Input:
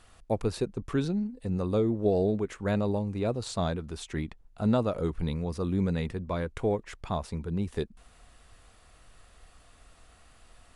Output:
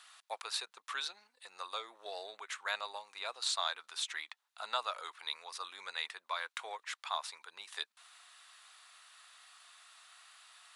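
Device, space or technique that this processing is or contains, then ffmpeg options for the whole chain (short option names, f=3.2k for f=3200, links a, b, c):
headphones lying on a table: -af "highpass=f=1k:w=0.5412,highpass=f=1k:w=1.3066,equalizer=f=3.8k:t=o:w=0.44:g=6,volume=2.5dB"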